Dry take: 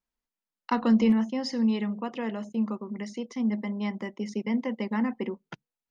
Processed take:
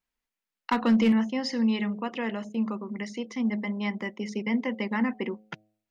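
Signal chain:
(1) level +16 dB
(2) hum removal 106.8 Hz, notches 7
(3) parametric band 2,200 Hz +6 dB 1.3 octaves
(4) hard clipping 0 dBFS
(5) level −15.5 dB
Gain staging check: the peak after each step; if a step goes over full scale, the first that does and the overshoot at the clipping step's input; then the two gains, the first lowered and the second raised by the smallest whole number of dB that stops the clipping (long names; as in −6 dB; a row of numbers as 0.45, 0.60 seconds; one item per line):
+3.5, +3.5, +5.0, 0.0, −15.5 dBFS
step 1, 5.0 dB
step 1 +11 dB, step 5 −10.5 dB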